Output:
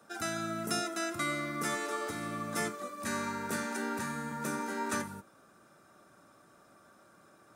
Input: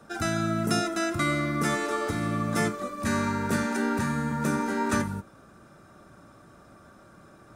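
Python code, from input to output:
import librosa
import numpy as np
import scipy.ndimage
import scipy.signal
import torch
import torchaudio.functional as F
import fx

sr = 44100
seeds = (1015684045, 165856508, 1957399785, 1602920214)

y = fx.highpass(x, sr, hz=330.0, slope=6)
y = fx.high_shelf(y, sr, hz=7600.0, db=6.5)
y = y * librosa.db_to_amplitude(-6.0)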